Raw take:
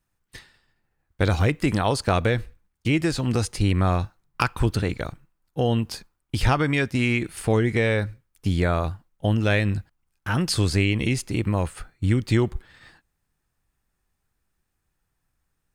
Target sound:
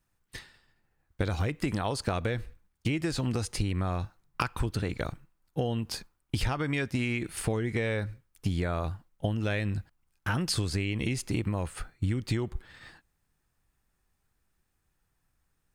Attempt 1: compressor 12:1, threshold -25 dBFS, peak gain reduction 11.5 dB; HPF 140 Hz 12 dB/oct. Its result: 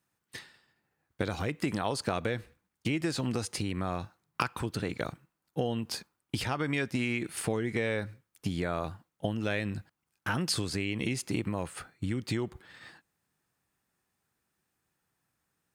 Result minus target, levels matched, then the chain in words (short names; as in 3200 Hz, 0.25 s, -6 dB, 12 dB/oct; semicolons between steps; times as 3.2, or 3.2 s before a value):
125 Hz band -3.5 dB
compressor 12:1, threshold -25 dBFS, peak gain reduction 11.5 dB